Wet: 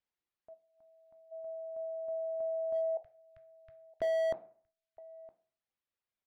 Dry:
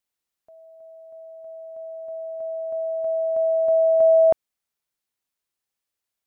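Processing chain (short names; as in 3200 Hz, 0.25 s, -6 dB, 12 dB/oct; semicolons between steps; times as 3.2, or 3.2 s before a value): 0.54–1.32 spectral gain 340–710 Hz -15 dB; 2.97–4.02 inverse Chebyshev band-stop 240–780 Hz, stop band 50 dB; reverb removal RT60 0.72 s; dynamic EQ 500 Hz, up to -3 dB, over -35 dBFS, Q 1.6; compressor 16:1, threshold -23 dBFS, peak gain reduction 8.5 dB; in parallel at -8.5 dB: soft clip -19 dBFS, distortion -22 dB; on the sum: air absorption 210 m; echo 0.965 s -24 dB; on a send at -8 dB: reverb RT60 0.45 s, pre-delay 13 ms; on the sum: slew limiter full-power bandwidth 44 Hz; gain -5.5 dB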